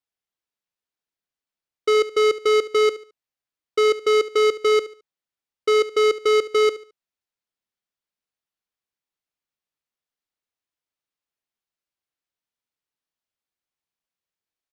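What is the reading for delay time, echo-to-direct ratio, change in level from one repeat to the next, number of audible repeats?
72 ms, -15.5 dB, -10.0 dB, 2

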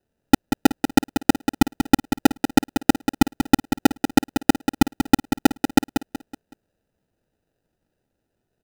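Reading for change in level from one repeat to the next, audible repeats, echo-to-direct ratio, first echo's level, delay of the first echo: -8.5 dB, 4, -7.5 dB, -8.0 dB, 0.187 s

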